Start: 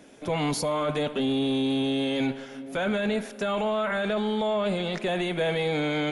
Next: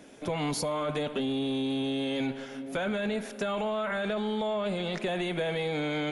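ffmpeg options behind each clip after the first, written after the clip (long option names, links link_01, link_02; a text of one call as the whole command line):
ffmpeg -i in.wav -af "acompressor=threshold=-27dB:ratio=6" out.wav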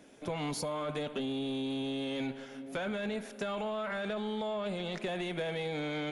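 ffmpeg -i in.wav -af "aeval=exprs='0.112*(cos(1*acos(clip(val(0)/0.112,-1,1)))-cos(1*PI/2))+0.01*(cos(3*acos(clip(val(0)/0.112,-1,1)))-cos(3*PI/2))':channel_layout=same,volume=-3dB" out.wav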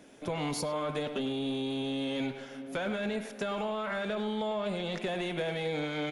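ffmpeg -i in.wav -filter_complex "[0:a]asplit=2[link_01][link_02];[link_02]adelay=100,highpass=300,lowpass=3400,asoftclip=type=hard:threshold=-31.5dB,volume=-9dB[link_03];[link_01][link_03]amix=inputs=2:normalize=0,volume=2dB" out.wav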